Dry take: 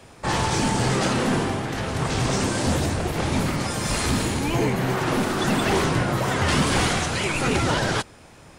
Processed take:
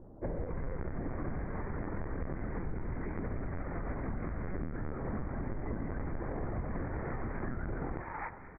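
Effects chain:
linear delta modulator 64 kbit/s, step −42 dBFS
multiband delay without the direct sound lows, highs 260 ms, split 1,400 Hz
in parallel at −4.5 dB: bit reduction 5 bits
on the sum: linear-prediction vocoder at 8 kHz pitch kept
pitch shifter −9.5 semitones
delay that swaps between a low-pass and a high-pass 111 ms, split 930 Hz, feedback 53%, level −13 dB
downward compressor 6 to 1, threshold −31 dBFS, peak gain reduction 17 dB
level −3 dB

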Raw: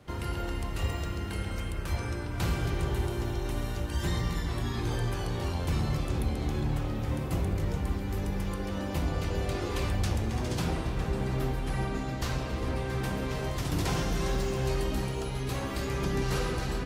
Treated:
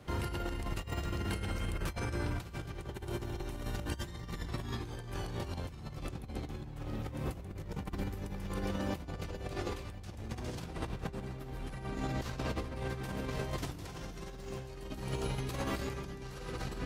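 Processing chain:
compressor whose output falls as the input rises −34 dBFS, ratio −0.5
level −3.5 dB

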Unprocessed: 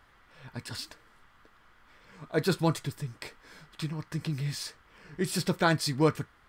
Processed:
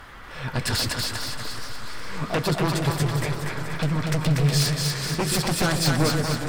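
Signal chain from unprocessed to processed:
in parallel at −6 dB: slack as between gear wheels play −28 dBFS
on the sum: downward compressor 10 to 1, threshold −33 dBFS, peak gain reduction 18 dB
sine wavefolder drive 15 dB, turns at −18 dBFS
0:03.16–0:03.83: low-pass filter 2,100 Hz 12 dB per octave
on a send: echo with a time of its own for lows and highs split 520 Hz, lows 132 ms, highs 240 ms, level −3 dB
on the sum: feedback echo with a swinging delay time 420 ms, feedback 50%, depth 91 cents, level −10 dB
level −1.5 dB

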